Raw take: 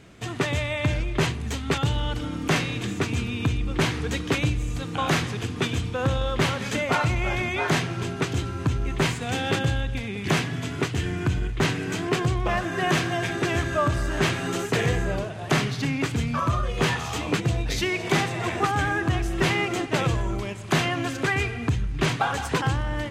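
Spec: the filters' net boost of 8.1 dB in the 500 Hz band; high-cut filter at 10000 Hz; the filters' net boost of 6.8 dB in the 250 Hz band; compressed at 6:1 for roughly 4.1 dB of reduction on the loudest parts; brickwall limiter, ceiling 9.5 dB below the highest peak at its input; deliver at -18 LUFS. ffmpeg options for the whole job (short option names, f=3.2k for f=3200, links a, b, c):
-af "lowpass=10k,equalizer=f=250:t=o:g=6.5,equalizer=f=500:t=o:g=8.5,acompressor=threshold=-18dB:ratio=6,volume=8dB,alimiter=limit=-8.5dB:level=0:latency=1"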